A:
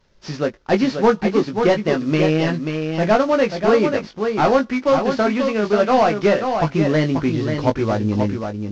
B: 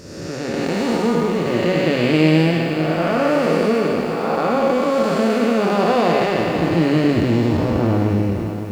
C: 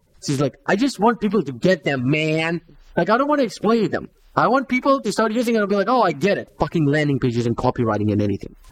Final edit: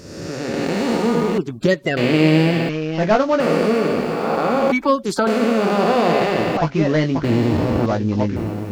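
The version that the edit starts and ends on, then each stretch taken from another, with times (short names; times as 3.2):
B
1.38–1.97 from C
2.69–3.4 from A
4.72–5.27 from C
6.57–7.24 from A
7.86–8.36 from A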